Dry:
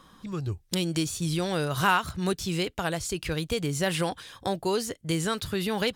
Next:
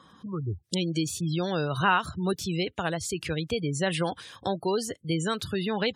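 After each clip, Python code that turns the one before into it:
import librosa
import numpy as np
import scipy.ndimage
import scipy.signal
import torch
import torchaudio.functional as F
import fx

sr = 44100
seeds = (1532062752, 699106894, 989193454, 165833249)

y = scipy.signal.sosfilt(scipy.signal.butter(4, 73.0, 'highpass', fs=sr, output='sos'), x)
y = fx.spec_gate(y, sr, threshold_db=-25, keep='strong')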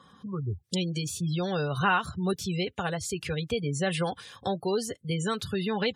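y = fx.notch_comb(x, sr, f0_hz=320.0)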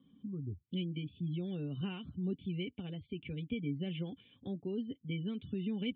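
y = fx.formant_cascade(x, sr, vowel='i')
y = y * 10.0 ** (2.0 / 20.0)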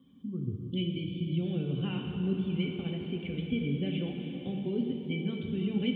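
y = fx.rev_plate(x, sr, seeds[0], rt60_s=4.3, hf_ratio=0.9, predelay_ms=0, drr_db=1.0)
y = y * 10.0 ** (4.0 / 20.0)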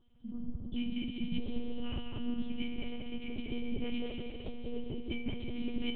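y = x + 0.57 * np.pad(x, (int(1.7 * sr / 1000.0), 0))[:len(x)]
y = y + 10.0 ** (-5.5 / 20.0) * np.pad(y, (int(195 * sr / 1000.0), 0))[:len(y)]
y = fx.lpc_monotone(y, sr, seeds[1], pitch_hz=240.0, order=8)
y = y * 10.0 ** (-3.0 / 20.0)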